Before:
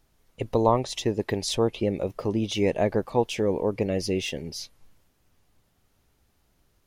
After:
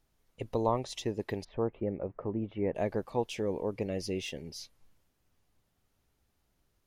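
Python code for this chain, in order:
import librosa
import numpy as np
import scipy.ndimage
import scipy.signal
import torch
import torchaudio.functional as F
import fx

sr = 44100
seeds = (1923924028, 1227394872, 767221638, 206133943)

y = fx.lowpass(x, sr, hz=1800.0, slope=24, at=(1.43, 2.74), fade=0.02)
y = F.gain(torch.from_numpy(y), -8.0).numpy()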